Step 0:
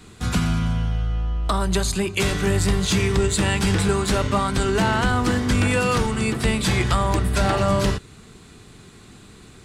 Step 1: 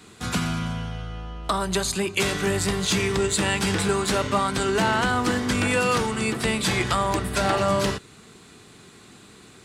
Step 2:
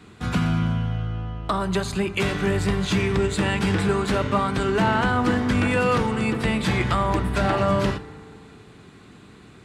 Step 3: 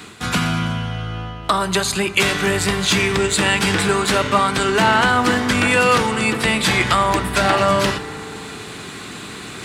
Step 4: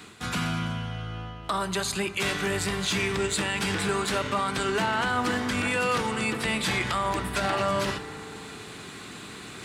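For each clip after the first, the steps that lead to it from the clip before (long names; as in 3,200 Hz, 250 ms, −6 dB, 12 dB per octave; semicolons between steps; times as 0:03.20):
high-pass filter 230 Hz 6 dB per octave
bass and treble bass +5 dB, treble −11 dB; feedback delay network reverb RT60 2.6 s, low-frequency decay 0.8×, high-frequency decay 0.3×, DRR 13 dB
spectral tilt +2.5 dB per octave; reversed playback; upward compression, threshold −29 dBFS; reversed playback; level +7 dB
brickwall limiter −8.5 dBFS, peak gain reduction 6.5 dB; level −8.5 dB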